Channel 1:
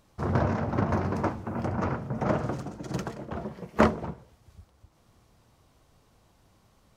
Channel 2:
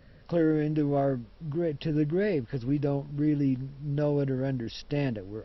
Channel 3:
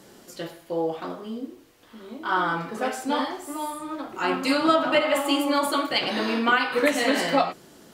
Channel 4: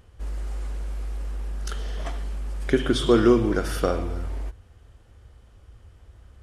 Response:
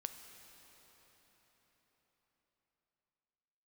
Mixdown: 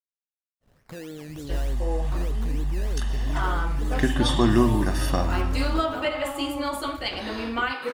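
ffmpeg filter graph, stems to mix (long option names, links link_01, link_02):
-filter_complex "[1:a]highshelf=frequency=2000:gain=10.5,alimiter=level_in=2.5dB:limit=-24dB:level=0:latency=1,volume=-2.5dB,acrusher=samples=16:mix=1:aa=0.000001:lfo=1:lforange=9.6:lforate=3.3,adelay=600,volume=-4.5dB[link_01];[2:a]adelay=1100,volume=-5.5dB[link_02];[3:a]aecho=1:1:1.1:0.81,adelay=1300,volume=-0.5dB[link_03];[link_01][link_02][link_03]amix=inputs=3:normalize=0,agate=range=-33dB:threshold=-51dB:ratio=3:detection=peak"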